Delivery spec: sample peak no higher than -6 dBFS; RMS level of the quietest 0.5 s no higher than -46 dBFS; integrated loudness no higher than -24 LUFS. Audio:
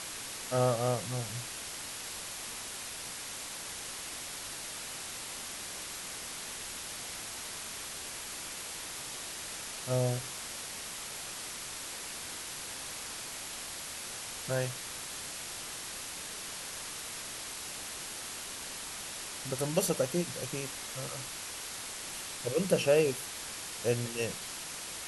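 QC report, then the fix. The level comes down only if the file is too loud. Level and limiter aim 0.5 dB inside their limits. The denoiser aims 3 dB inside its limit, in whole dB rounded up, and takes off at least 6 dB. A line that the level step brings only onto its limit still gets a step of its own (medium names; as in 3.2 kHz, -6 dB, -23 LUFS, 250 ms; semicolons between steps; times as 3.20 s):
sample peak -13.5 dBFS: pass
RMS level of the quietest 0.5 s -42 dBFS: fail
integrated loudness -36.0 LUFS: pass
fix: noise reduction 7 dB, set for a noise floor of -42 dBFS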